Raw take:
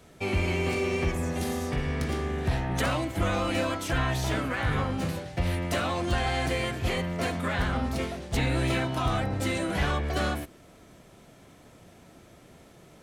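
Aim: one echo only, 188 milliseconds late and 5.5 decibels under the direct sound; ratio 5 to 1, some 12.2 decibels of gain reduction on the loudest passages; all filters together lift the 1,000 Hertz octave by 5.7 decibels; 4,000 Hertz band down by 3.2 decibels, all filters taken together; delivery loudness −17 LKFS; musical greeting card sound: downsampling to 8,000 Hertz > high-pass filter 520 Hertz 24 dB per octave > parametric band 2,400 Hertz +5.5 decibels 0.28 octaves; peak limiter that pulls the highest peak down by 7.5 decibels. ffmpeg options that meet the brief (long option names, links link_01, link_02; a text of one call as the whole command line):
ffmpeg -i in.wav -af "equalizer=frequency=1000:width_type=o:gain=8,equalizer=frequency=4000:width_type=o:gain=-6,acompressor=threshold=-35dB:ratio=5,alimiter=level_in=8dB:limit=-24dB:level=0:latency=1,volume=-8dB,aecho=1:1:188:0.531,aresample=8000,aresample=44100,highpass=frequency=520:width=0.5412,highpass=frequency=520:width=1.3066,equalizer=frequency=2400:width_type=o:width=0.28:gain=5.5,volume=25dB" out.wav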